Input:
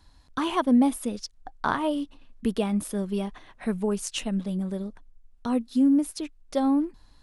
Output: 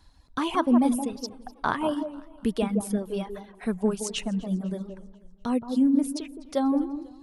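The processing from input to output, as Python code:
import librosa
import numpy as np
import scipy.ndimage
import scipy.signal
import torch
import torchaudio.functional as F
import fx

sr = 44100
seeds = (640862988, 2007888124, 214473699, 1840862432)

y = fx.echo_wet_lowpass(x, sr, ms=169, feedback_pct=30, hz=1100.0, wet_db=-3.5)
y = fx.dereverb_blind(y, sr, rt60_s=1.2)
y = fx.echo_warbled(y, sr, ms=247, feedback_pct=48, rate_hz=2.8, cents=104, wet_db=-22)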